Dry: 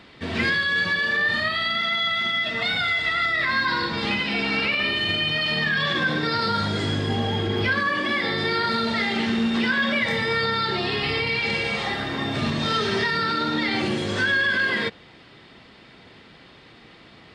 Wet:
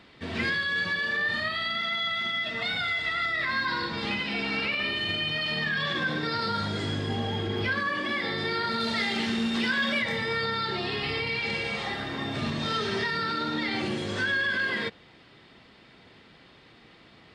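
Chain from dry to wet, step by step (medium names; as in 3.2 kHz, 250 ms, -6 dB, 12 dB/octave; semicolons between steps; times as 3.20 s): 8.80–10.02 s: treble shelf 4.3 kHz +9.5 dB; trim -5.5 dB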